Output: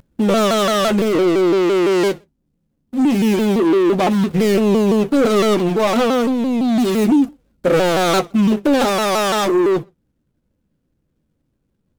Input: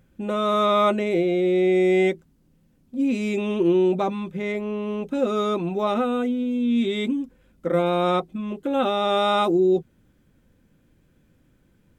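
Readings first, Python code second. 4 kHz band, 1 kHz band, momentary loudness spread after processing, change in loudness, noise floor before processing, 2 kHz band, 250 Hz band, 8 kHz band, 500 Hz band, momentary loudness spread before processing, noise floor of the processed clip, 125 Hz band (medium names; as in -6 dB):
+8.0 dB, +4.5 dB, 3 LU, +6.5 dB, -62 dBFS, +7.5 dB, +8.0 dB, no reading, +6.0 dB, 9 LU, -69 dBFS, +8.0 dB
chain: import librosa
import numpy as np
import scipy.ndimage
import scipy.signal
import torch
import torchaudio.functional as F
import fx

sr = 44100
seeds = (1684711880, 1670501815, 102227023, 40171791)

p1 = scipy.ndimage.median_filter(x, 25, mode='constant')
p2 = fx.high_shelf(p1, sr, hz=3700.0, db=11.0)
p3 = fx.leveller(p2, sr, passes=3)
p4 = fx.rider(p3, sr, range_db=4, speed_s=0.5)
p5 = fx.doubler(p4, sr, ms=14.0, db=-11.5)
p6 = p5 + fx.echo_feedback(p5, sr, ms=61, feedback_pct=31, wet_db=-23.0, dry=0)
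y = fx.vibrato_shape(p6, sr, shape='saw_down', rate_hz=5.9, depth_cents=160.0)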